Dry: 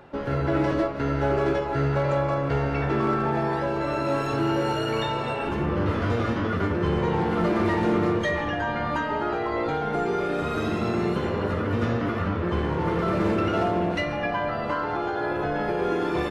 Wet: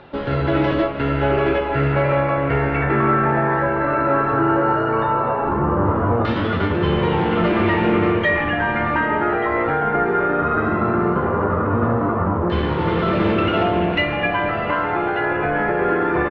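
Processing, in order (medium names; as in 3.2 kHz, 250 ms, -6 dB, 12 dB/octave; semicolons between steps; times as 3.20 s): LFO low-pass saw down 0.16 Hz 950–3900 Hz; distance through air 83 m; delay 1188 ms -14 dB; trim +5 dB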